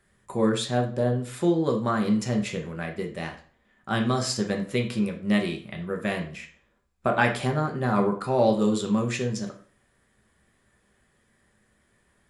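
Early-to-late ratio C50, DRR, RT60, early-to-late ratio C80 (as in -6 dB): 10.0 dB, 2.0 dB, 0.45 s, 15.0 dB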